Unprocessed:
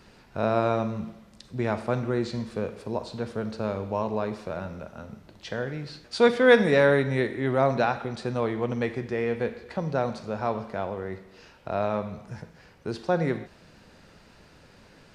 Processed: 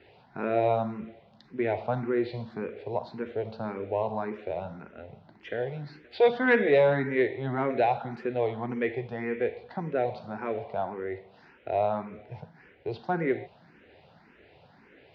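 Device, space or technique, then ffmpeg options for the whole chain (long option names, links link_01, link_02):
barber-pole phaser into a guitar amplifier: -filter_complex "[0:a]asplit=2[link_01][link_02];[link_02]afreqshift=1.8[link_03];[link_01][link_03]amix=inputs=2:normalize=1,asoftclip=type=tanh:threshold=-13.5dB,highpass=96,equalizer=frequency=200:width_type=q:width=4:gain=-4,equalizer=frequency=400:width_type=q:width=4:gain=4,equalizer=frequency=750:width_type=q:width=4:gain=6,equalizer=frequency=1200:width_type=q:width=4:gain=-5,equalizer=frequency=2100:width_type=q:width=4:gain=4,lowpass=frequency=3600:width=0.5412,lowpass=frequency=3600:width=1.3066"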